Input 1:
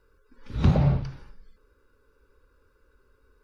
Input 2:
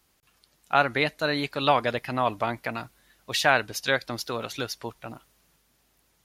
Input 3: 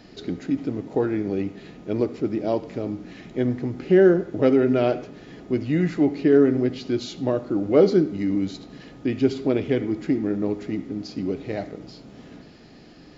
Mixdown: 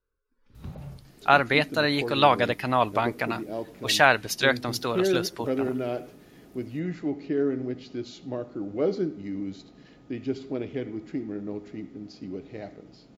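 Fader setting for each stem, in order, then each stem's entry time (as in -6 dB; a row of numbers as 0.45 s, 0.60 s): -19.5 dB, +2.5 dB, -9.5 dB; 0.00 s, 0.55 s, 1.05 s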